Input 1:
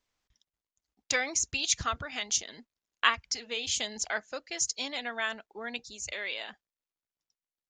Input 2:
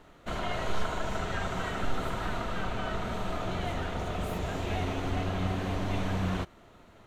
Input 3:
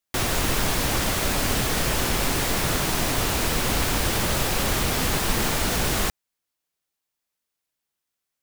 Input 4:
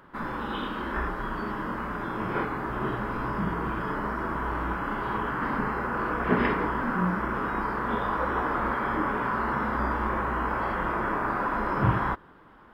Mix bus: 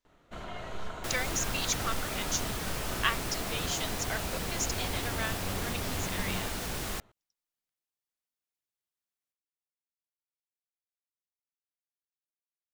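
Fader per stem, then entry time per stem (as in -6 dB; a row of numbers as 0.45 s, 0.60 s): -4.0 dB, -8.0 dB, -12.0 dB, mute; 0.00 s, 0.05 s, 0.90 s, mute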